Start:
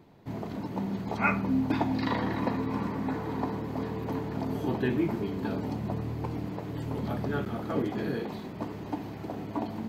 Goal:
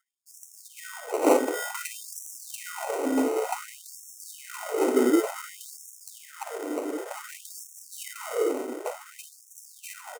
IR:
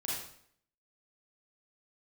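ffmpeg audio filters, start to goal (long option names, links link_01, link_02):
-filter_complex "[0:a]anlmdn=0.251,areverse,acompressor=mode=upward:threshold=-41dB:ratio=2.5,areverse,equalizer=frequency=3900:width_type=o:width=0.44:gain=-9,asplit=2[link_01][link_02];[link_02]aecho=0:1:41|57:0.237|0.316[link_03];[link_01][link_03]amix=inputs=2:normalize=0,acrusher=samples=26:mix=1:aa=0.000001,atempo=0.97,acontrast=87,equalizer=frequency=125:width_type=o:width=1:gain=-7,equalizer=frequency=250:width_type=o:width=1:gain=4,equalizer=frequency=500:width_type=o:width=1:gain=11,equalizer=frequency=4000:width_type=o:width=1:gain=-10,equalizer=frequency=8000:width_type=o:width=1:gain=6,afftfilt=real='re*gte(b*sr/1024,230*pow(5500/230,0.5+0.5*sin(2*PI*0.55*pts/sr)))':imag='im*gte(b*sr/1024,230*pow(5500/230,0.5+0.5*sin(2*PI*0.55*pts/sr)))':win_size=1024:overlap=0.75,volume=-5.5dB"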